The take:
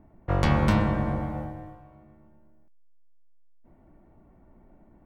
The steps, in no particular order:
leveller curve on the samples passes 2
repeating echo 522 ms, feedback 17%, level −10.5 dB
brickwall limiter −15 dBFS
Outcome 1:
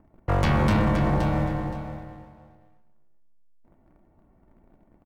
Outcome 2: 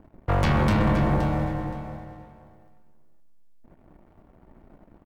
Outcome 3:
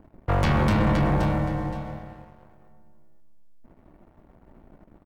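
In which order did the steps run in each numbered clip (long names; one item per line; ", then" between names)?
leveller curve on the samples, then repeating echo, then brickwall limiter
brickwall limiter, then leveller curve on the samples, then repeating echo
repeating echo, then brickwall limiter, then leveller curve on the samples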